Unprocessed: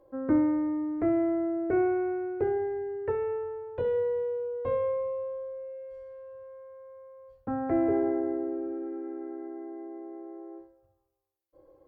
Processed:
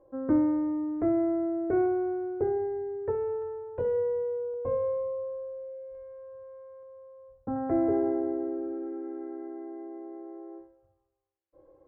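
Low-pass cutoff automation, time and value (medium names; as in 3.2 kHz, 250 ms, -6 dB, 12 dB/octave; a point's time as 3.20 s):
1.4 kHz
from 1.86 s 1.1 kHz
from 3.42 s 1.4 kHz
from 4.54 s 1 kHz
from 5.95 s 1.4 kHz
from 6.83 s 1 kHz
from 7.56 s 1.4 kHz
from 8.40 s 1.9 kHz
from 9.15 s 2.3 kHz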